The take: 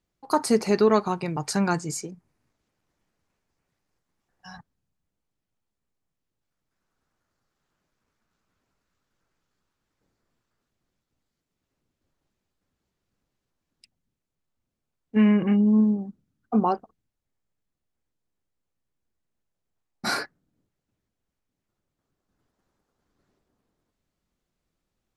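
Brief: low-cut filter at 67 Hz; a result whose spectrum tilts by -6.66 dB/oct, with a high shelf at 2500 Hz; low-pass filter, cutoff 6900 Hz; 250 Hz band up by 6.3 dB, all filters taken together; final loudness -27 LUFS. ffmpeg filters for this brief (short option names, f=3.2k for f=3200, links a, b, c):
-af "highpass=67,lowpass=6.9k,equalizer=f=250:t=o:g=8,highshelf=f=2.5k:g=4,volume=-9dB"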